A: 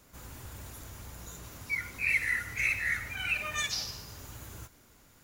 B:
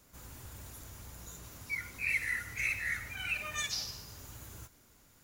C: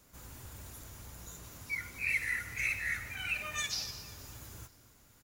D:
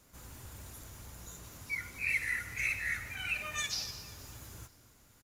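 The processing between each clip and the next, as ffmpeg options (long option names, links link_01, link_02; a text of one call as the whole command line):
ffmpeg -i in.wav -af "bass=frequency=250:gain=1,treble=frequency=4000:gain=3,volume=-4.5dB" out.wav
ffmpeg -i in.wav -af "aecho=1:1:241|482|723|964:0.119|0.0606|0.0309|0.0158" out.wav
ffmpeg -i in.wav -af "aresample=32000,aresample=44100" out.wav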